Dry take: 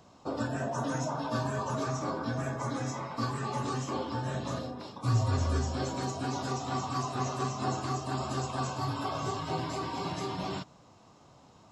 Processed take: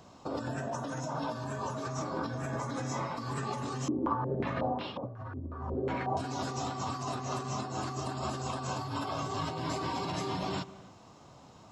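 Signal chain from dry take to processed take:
compressor whose output falls as the input rises −36 dBFS, ratio −1
convolution reverb, pre-delay 105 ms, DRR 17.5 dB
0:03.88–0:06.17: low-pass on a step sequencer 5.5 Hz 310–3,000 Hz

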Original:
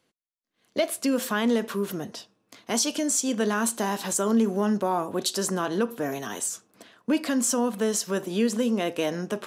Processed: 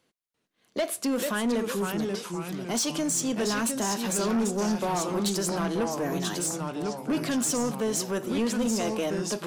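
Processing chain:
delay with pitch and tempo change per echo 343 ms, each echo −2 semitones, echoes 3, each echo −6 dB
soft clipping −21 dBFS, distortion −13 dB

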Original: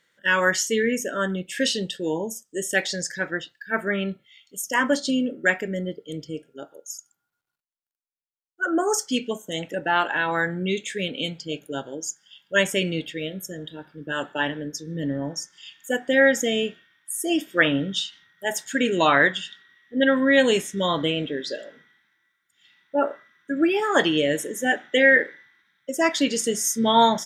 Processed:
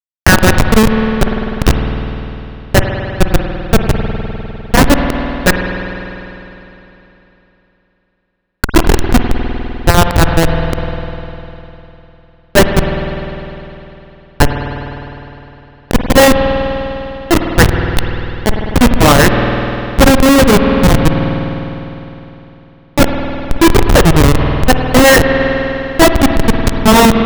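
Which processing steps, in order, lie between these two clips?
running median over 3 samples
comparator with hysteresis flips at −16.5 dBFS
spring reverb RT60 3.3 s, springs 50 ms, chirp 55 ms, DRR 10.5 dB
boost into a limiter +28 dB
level −1 dB

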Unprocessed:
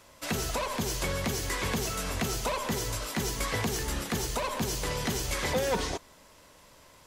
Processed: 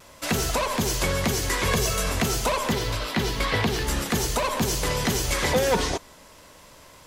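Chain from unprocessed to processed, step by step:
0:02.72–0:03.87: high shelf with overshoot 5,300 Hz −8 dB, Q 1.5
pitch vibrato 0.48 Hz 14 cents
0:01.67–0:02.09: comb filter 1.8 ms, depth 55%
level +6.5 dB

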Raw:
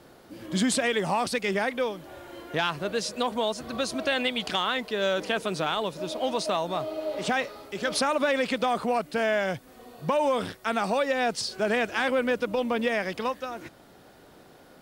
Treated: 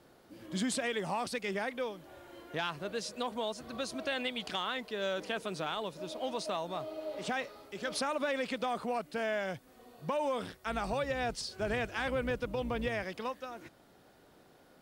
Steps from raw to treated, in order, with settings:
0:10.51–0:13.04: sub-octave generator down 2 octaves, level −2 dB
level −8.5 dB

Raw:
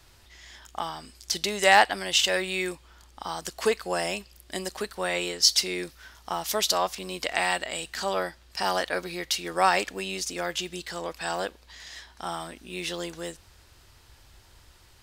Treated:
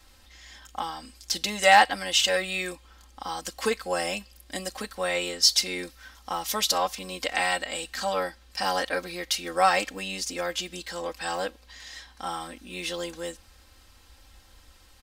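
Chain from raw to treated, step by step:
comb filter 3.8 ms, depth 83%
level −2 dB

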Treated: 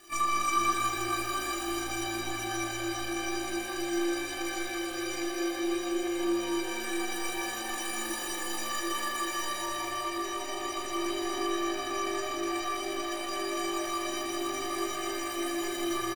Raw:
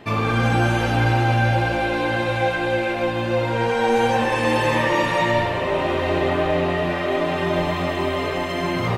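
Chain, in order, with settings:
stylus tracing distortion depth 0.27 ms
spectral tilt +2 dB per octave
bit reduction 7 bits
soft clipping −19 dBFS, distortion −12 dB
comb filter 3.3 ms, depth 52%
tape delay 93 ms, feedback 90%, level −8 dB, low-pass 5,800 Hz
time stretch by overlap-add 1.8×, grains 81 ms
convolution reverb RT60 4.3 s, pre-delay 136 ms, DRR 0 dB
speech leveller within 4 dB 2 s
stiff-string resonator 350 Hz, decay 0.23 s, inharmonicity 0.03
level +3.5 dB

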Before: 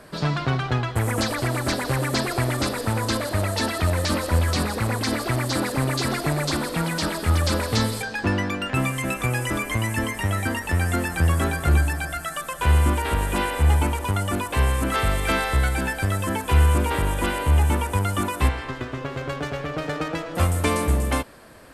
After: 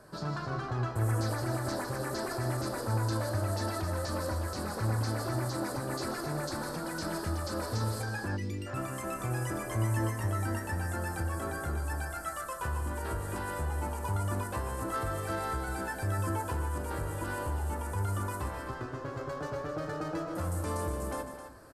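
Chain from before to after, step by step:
brickwall limiter −17.5 dBFS, peak gain reduction 9.5 dB
loudspeakers that aren't time-aligned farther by 52 metres −12 dB, 90 metres −10 dB
on a send at −4 dB: convolution reverb, pre-delay 4 ms
on the sum: gain on a spectral selection 0:08.37–0:08.67, 510–1,900 Hz −19 dB
flat-topped bell 2,700 Hz −9.5 dB 1.1 octaves
reversed playback
upward compression, threshold −41 dBFS
reversed playback
level −9 dB

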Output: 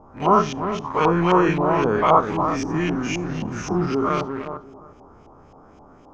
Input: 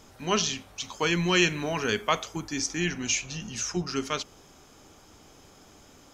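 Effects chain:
every bin's largest magnitude spread in time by 120 ms
flat-topped bell 2,600 Hz −13.5 dB
feedback echo with a low-pass in the loop 358 ms, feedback 28%, low-pass 980 Hz, level −6.5 dB
in parallel at −7 dB: bit reduction 5 bits
on the sum: auto-filter low-pass saw up 3.8 Hz 780–2,900 Hz
0:02.39–0:03.62: multiband upward and downward compressor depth 40%

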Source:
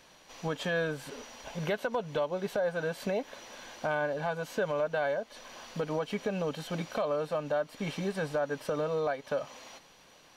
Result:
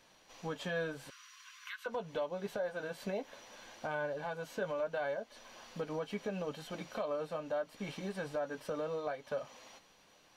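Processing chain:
flanger 0.75 Hz, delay 8.7 ms, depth 1.9 ms, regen −47%
0:01.10–0:01.86: linear-phase brick-wall high-pass 1,000 Hz
level −2.5 dB

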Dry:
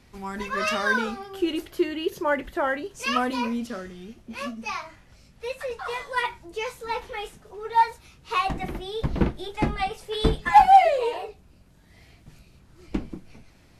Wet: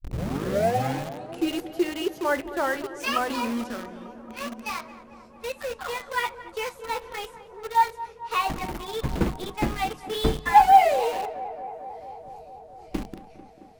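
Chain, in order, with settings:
turntable start at the beginning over 1.53 s
mains-hum notches 50/100/150/200/250/300 Hz
in parallel at −3 dB: bit reduction 5 bits
on the sum: tape delay 223 ms, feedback 89%, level −14 dB, low-pass 1,700 Hz
level −5.5 dB

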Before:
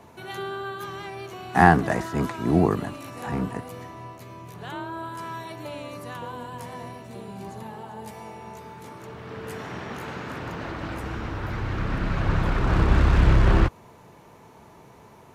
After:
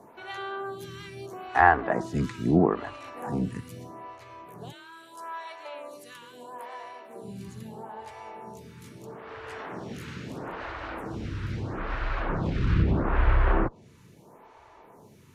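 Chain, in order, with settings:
treble cut that deepens with the level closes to 2,300 Hz, closed at −14 dBFS
0:04.71–0:07.22: high-pass filter 780 Hz → 310 Hz 12 dB per octave
phaser with staggered stages 0.77 Hz

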